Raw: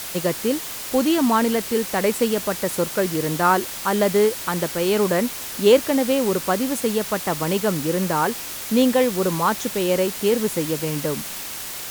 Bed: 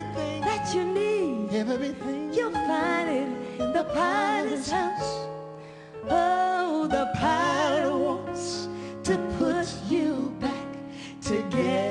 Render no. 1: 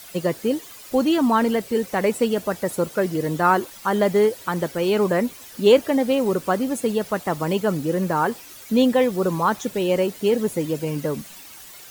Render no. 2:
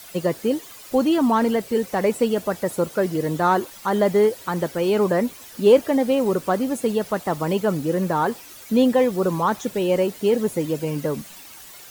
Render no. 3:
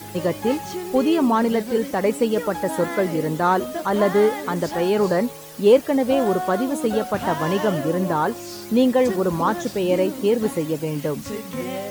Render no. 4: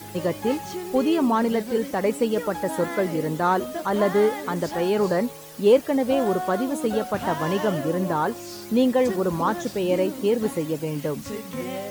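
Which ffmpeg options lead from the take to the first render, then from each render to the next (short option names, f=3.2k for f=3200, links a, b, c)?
-af "afftdn=nr=13:nf=-32"
-filter_complex "[0:a]acrossover=split=1100[a][b];[a]crystalizer=i=5.5:c=0[c];[b]asoftclip=type=tanh:threshold=-28dB[d];[c][d]amix=inputs=2:normalize=0"
-filter_complex "[1:a]volume=-4dB[a];[0:a][a]amix=inputs=2:normalize=0"
-af "volume=-2.5dB"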